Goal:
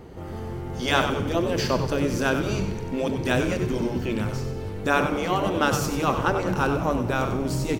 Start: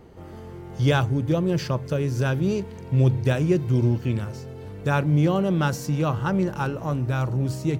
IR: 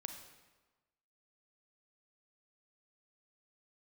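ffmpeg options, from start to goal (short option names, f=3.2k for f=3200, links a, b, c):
-filter_complex "[0:a]asplit=2[a][b];[1:a]atrim=start_sample=2205[c];[b][c]afir=irnorm=-1:irlink=0,volume=1.5dB[d];[a][d]amix=inputs=2:normalize=0,afftfilt=real='re*lt(hypot(re,im),0.794)':imag='im*lt(hypot(re,im),0.794)':win_size=1024:overlap=0.75,asplit=6[e][f][g][h][i][j];[f]adelay=95,afreqshift=-100,volume=-8dB[k];[g]adelay=190,afreqshift=-200,volume=-15.3dB[l];[h]adelay=285,afreqshift=-300,volume=-22.7dB[m];[i]adelay=380,afreqshift=-400,volume=-30dB[n];[j]adelay=475,afreqshift=-500,volume=-37.3dB[o];[e][k][l][m][n][o]amix=inputs=6:normalize=0"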